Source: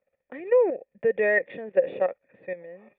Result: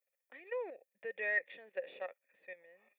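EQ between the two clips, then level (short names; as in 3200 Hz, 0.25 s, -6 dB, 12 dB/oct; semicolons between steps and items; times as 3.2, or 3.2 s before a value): differentiator; +3.0 dB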